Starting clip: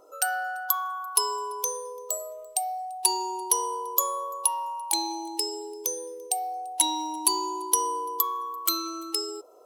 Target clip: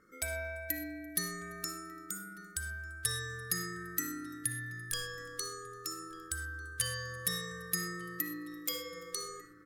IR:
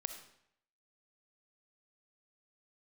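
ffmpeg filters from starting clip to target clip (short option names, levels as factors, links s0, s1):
-filter_complex "[0:a]asplit=2[s0][s1];[s1]adelay=1196,lowpass=f=1900:p=1,volume=0.15,asplit=2[s2][s3];[s3]adelay=1196,lowpass=f=1900:p=1,volume=0.53,asplit=2[s4][s5];[s5]adelay=1196,lowpass=f=1900:p=1,volume=0.53,asplit=2[s6][s7];[s7]adelay=1196,lowpass=f=1900:p=1,volume=0.53,asplit=2[s8][s9];[s9]adelay=1196,lowpass=f=1900:p=1,volume=0.53[s10];[s0][s2][s4][s6][s8][s10]amix=inputs=6:normalize=0,aeval=exprs='val(0)*sin(2*PI*820*n/s)':c=same[s11];[1:a]atrim=start_sample=2205,afade=t=out:st=0.18:d=0.01,atrim=end_sample=8379[s12];[s11][s12]afir=irnorm=-1:irlink=0,volume=0.501"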